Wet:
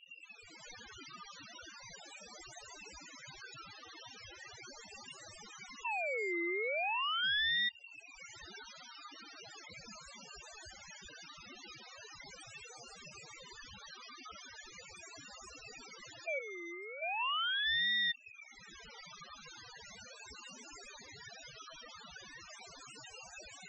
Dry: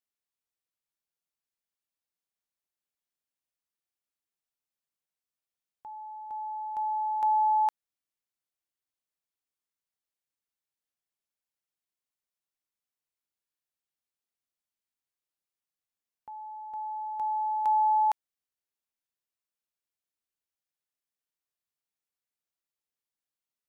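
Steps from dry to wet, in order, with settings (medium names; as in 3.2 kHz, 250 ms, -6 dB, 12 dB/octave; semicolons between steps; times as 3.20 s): one-bit delta coder 32 kbps, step -42 dBFS; recorder AGC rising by 27 dB/s; 16.39–17.02 s: high-pass 1.4 kHz 12 dB/octave; added noise brown -51 dBFS; loudest bins only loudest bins 4; ring modulator with a swept carrier 2 kHz, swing 40%, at 0.39 Hz; trim -2 dB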